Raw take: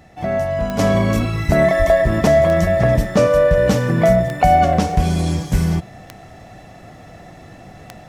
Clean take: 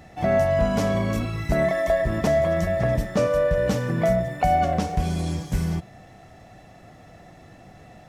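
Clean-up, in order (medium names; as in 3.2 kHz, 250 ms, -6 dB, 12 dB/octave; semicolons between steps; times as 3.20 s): de-click; de-plosive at 1.47/1.78 s; trim 0 dB, from 0.79 s -7.5 dB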